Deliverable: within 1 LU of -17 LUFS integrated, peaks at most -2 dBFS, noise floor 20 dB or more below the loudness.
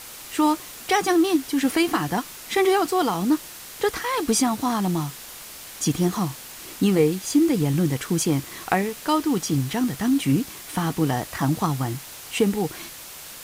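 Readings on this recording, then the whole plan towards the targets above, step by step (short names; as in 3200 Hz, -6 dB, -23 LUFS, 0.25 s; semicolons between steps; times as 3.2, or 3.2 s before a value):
noise floor -40 dBFS; noise floor target -44 dBFS; loudness -23.5 LUFS; peak -5.0 dBFS; loudness target -17.0 LUFS
-> noise print and reduce 6 dB; gain +6.5 dB; limiter -2 dBFS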